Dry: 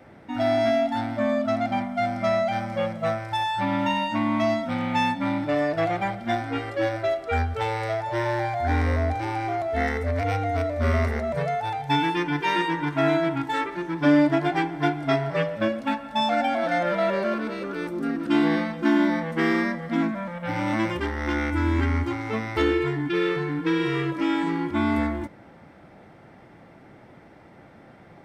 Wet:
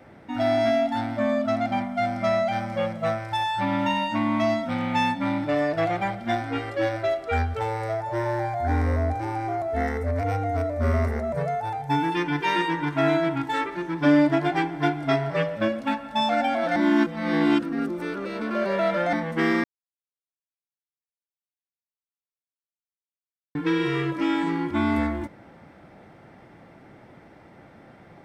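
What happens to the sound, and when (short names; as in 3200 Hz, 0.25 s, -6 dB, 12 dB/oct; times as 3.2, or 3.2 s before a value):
7.59–12.12 bell 3200 Hz -9.5 dB 1.5 oct
16.76–19.13 reverse
19.64–23.55 mute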